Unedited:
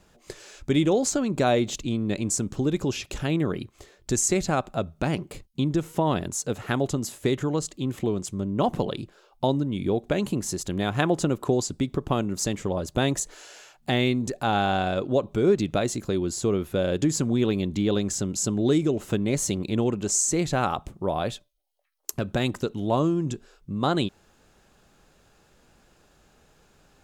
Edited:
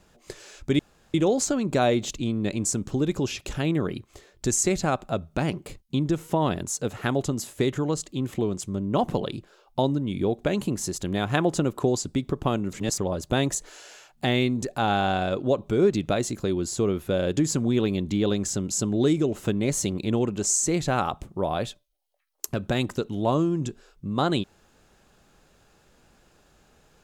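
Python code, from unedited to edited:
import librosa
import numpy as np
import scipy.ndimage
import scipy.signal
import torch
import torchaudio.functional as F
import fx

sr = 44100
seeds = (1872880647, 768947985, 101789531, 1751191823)

y = fx.edit(x, sr, fx.insert_room_tone(at_s=0.79, length_s=0.35),
    fx.reverse_span(start_s=12.38, length_s=0.25), tone=tone)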